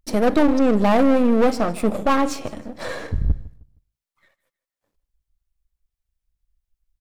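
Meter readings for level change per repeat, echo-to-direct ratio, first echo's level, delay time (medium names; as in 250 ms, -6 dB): -10.0 dB, -18.5 dB, -19.0 dB, 156 ms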